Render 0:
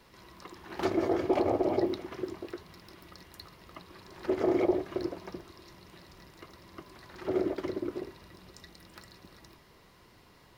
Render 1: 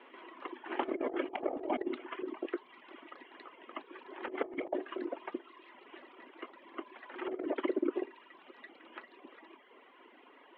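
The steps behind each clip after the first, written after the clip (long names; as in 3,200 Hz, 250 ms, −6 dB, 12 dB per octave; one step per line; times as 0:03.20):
Chebyshev band-pass filter 250–3,200 Hz, order 5
reverb reduction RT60 1.2 s
compressor whose output falls as the input rises −35 dBFS, ratio −0.5
level +1 dB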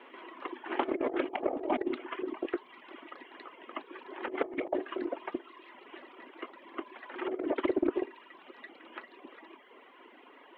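highs frequency-modulated by the lows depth 0.16 ms
level +3.5 dB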